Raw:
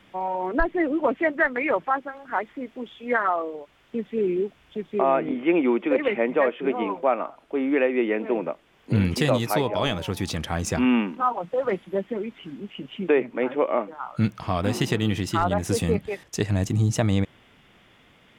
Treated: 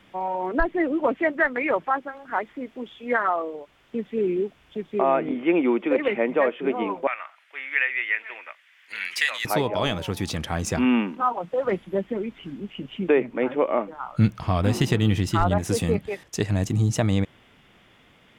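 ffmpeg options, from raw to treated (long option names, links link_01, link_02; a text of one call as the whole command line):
ffmpeg -i in.wav -filter_complex "[0:a]asettb=1/sr,asplit=3[link_01][link_02][link_03];[link_01]atrim=end=7.074[link_04];[link_02]atrim=start=7.07:end=9.45,asetpts=PTS-STARTPTS,afade=type=in:duration=0.004:curve=qsin,afade=type=out:start_time=2.376:duration=0.004:curve=qsin,highpass=frequency=1900:width_type=q:width=3.1[link_05];[link_03]atrim=start=9.446[link_06];[link_04][link_05]acrossfade=duration=0.004:curve1=hsin:curve2=qsin[link_07];[link_07][link_06]acrossfade=duration=0.004:curve1=qsin:curve2=hsin,asettb=1/sr,asplit=3[link_08][link_09][link_10];[link_08]atrim=end=11.674[link_11];[link_09]atrim=start=11.67:end=15.58,asetpts=PTS-STARTPTS,afade=type=in:duration=0.004:curve=qsin,afade=type=out:start_time=3.906:duration=0.004:curve=qsin,lowshelf=frequency=100:gain=11.5[link_12];[link_10]atrim=start=15.576[link_13];[link_11][link_12]acrossfade=duration=0.004:curve1=hsin:curve2=qsin[link_14];[link_14][link_13]acrossfade=duration=0.004:curve1=qsin:curve2=hsin" out.wav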